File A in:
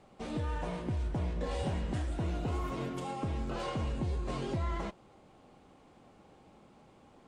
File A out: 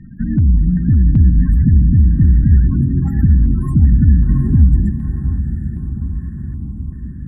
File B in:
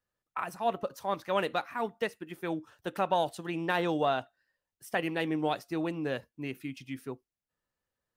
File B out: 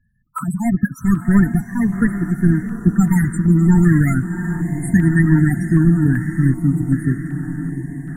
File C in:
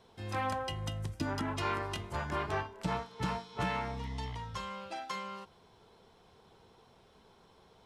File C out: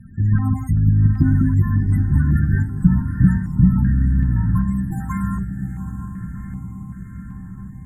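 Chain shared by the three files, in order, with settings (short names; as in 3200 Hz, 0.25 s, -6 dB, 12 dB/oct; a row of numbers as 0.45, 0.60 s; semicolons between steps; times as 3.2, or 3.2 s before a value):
half-waves squared off; EQ curve 110 Hz 0 dB, 190 Hz +1 dB, 270 Hz -5 dB, 510 Hz -28 dB, 1800 Hz -3 dB, 2700 Hz -23 dB, 7200 Hz +2 dB, 14000 Hz +7 dB; in parallel at 0 dB: compressor, threshold -39 dBFS; on the sum: loudest bins only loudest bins 16; air absorption 52 m; on a send: diffused feedback echo 0.758 s, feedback 66%, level -10 dB; on the sum: stepped notch 2.6 Hz 660–3400 Hz; normalise peaks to -1.5 dBFS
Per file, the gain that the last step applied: +16.5, +19.0, +15.5 dB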